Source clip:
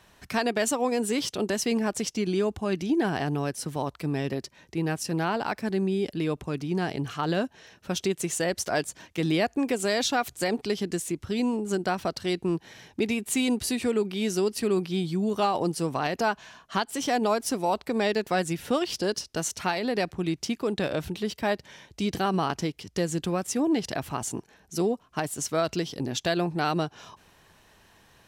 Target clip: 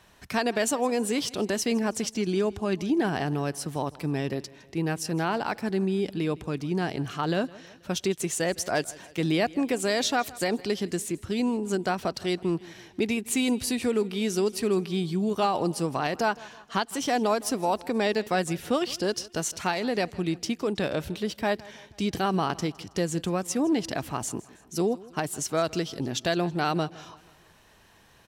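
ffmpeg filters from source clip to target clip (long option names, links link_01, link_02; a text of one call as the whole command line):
ffmpeg -i in.wav -af "aecho=1:1:161|322|483|644:0.0891|0.0446|0.0223|0.0111" out.wav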